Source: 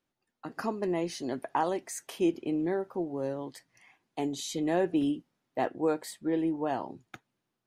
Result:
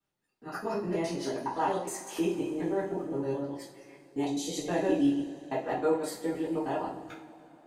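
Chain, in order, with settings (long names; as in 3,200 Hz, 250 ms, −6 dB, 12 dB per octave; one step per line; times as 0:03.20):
reversed piece by piece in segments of 104 ms
coupled-rooms reverb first 0.36 s, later 3.3 s, from −21 dB, DRR −8.5 dB
level −8 dB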